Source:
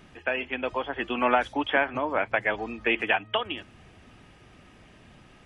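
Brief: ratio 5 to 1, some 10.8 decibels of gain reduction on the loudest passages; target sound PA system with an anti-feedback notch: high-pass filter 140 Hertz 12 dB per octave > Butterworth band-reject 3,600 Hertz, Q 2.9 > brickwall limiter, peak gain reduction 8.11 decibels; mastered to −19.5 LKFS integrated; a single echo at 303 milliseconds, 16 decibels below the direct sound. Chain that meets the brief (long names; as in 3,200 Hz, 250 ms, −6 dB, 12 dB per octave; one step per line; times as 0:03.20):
downward compressor 5 to 1, threshold −30 dBFS
high-pass filter 140 Hz 12 dB per octave
Butterworth band-reject 3,600 Hz, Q 2.9
single-tap delay 303 ms −16 dB
level +17.5 dB
brickwall limiter −7 dBFS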